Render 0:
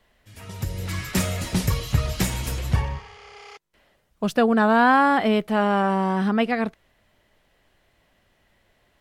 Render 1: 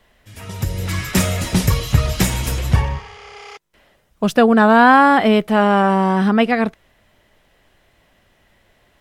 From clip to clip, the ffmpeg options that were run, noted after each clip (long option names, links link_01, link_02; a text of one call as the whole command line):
ffmpeg -i in.wav -af "bandreject=frequency=4400:width=25,volume=6.5dB" out.wav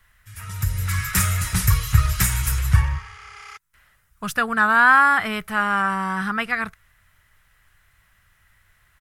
ffmpeg -i in.wav -af "firequalizer=gain_entry='entry(100,0);entry(240,-18);entry(600,-18);entry(1300,3);entry(3100,-7);entry(9700,4)':delay=0.05:min_phase=1" out.wav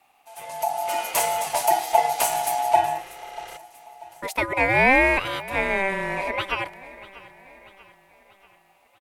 ffmpeg -i in.wav -af "aeval=exprs='val(0)*sin(2*PI*780*n/s)':channel_layout=same,aecho=1:1:639|1278|1917|2556:0.112|0.0572|0.0292|0.0149" out.wav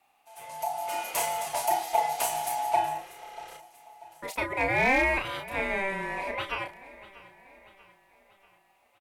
ffmpeg -i in.wav -filter_complex "[0:a]asplit=2[link_01][link_02];[link_02]adelay=33,volume=-6dB[link_03];[link_01][link_03]amix=inputs=2:normalize=0,asoftclip=type=hard:threshold=-8dB,volume=-7dB" out.wav